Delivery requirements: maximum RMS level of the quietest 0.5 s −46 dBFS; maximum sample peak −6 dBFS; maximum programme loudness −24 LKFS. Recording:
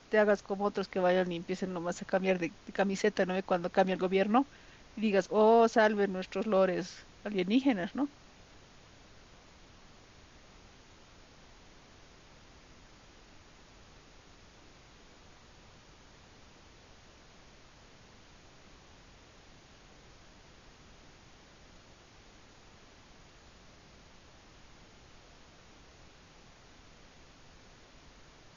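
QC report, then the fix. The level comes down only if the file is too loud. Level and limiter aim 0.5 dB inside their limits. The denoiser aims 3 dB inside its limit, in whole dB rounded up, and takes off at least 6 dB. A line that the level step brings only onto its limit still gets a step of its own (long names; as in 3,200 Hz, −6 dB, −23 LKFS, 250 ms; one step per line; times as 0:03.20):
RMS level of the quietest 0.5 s −57 dBFS: in spec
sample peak −12.5 dBFS: in spec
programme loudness −30.0 LKFS: in spec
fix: no processing needed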